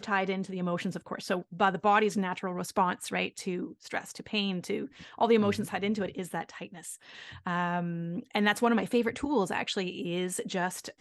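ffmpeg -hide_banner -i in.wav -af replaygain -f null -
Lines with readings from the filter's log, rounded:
track_gain = +9.4 dB
track_peak = 0.205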